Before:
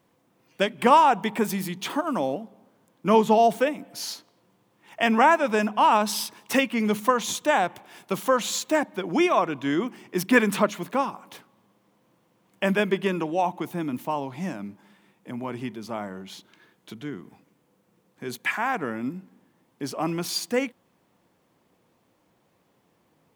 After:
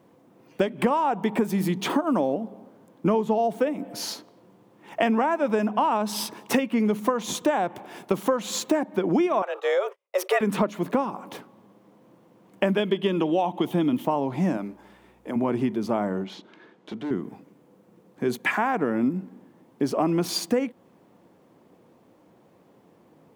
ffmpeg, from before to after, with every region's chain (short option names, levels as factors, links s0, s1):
-filter_complex "[0:a]asettb=1/sr,asplit=3[s0][s1][s2];[s0]atrim=end=9.424[s3];[s1]atrim=start=9.42:end=10.41,asetpts=PTS-STARTPTS,afade=t=in:d=0.004:c=qsin,afade=t=out:st=0.986:d=0.004:c=qsin,agate=range=0.00708:threshold=0.00891:ratio=16:release=100:detection=peak,highpass=430,afreqshift=190[s4];[s2]atrim=start=10.406[s5];[s3][s4]acrossfade=d=0.004:c1=hsin:c2=qsin[s6];[s6][s5]acrossfade=d=0.004:c1=qsin:c2=hsin,asettb=1/sr,asplit=3[s7][s8][s9];[s7]atrim=end=12.774[s10];[s8]atrim=start=12.77:end=14.05,asetpts=PTS-STARTPTS,afade=t=in:d=0.004:c=qsin,afade=t=out:st=1.276:d=0.004:c=qsin,equalizer=f=3200:t=o:w=0.36:g=15,bandreject=f=1500:w=22[s11];[s9]atrim=start=14.046[s12];[s10][s11]acrossfade=d=0.004:c1=hsin:c2=qsin[s13];[s13][s12]acrossfade=d=0.004:c1=qsin:c2=hsin,asettb=1/sr,asplit=3[s14][s15][s16];[s14]atrim=end=14.574[s17];[s15]atrim=start=14.57:end=15.36,asetpts=PTS-STARTPTS,afade=t=in:d=0.004:c=qsin,afade=t=out:st=0.786:d=0.004:c=qsin,bass=f=250:g=-14,treble=f=4000:g=1,aeval=exprs='val(0)+0.000447*(sin(2*PI*60*n/s)+sin(2*PI*2*60*n/s)/2+sin(2*PI*3*60*n/s)/3+sin(2*PI*4*60*n/s)/4+sin(2*PI*5*60*n/s)/5)':c=same[s18];[s16]atrim=start=15.356[s19];[s17][s18]acrossfade=d=0.004:c1=hsin:c2=qsin[s20];[s20][s19]acrossfade=d=0.004:c1=qsin:c2=hsin,asettb=1/sr,asplit=3[s21][s22][s23];[s21]atrim=end=16.244[s24];[s22]atrim=start=16.24:end=17.11,asetpts=PTS-STARTPTS,afade=t=in:d=0.004:c=qsin,afade=t=out:st=0.866:d=0.004:c=qsin,lowpass=4900,equalizer=f=70:t=o:w=2.1:g=-11.5,asoftclip=type=hard:threshold=0.0126[s25];[s23]atrim=start=17.106[s26];[s24][s25]acrossfade=d=0.004:c1=hsin:c2=qsin[s27];[s27][s26]acrossfade=d=0.004:c1=qsin:c2=hsin,equalizer=f=340:w=0.32:g=11.5,acompressor=threshold=0.112:ratio=12"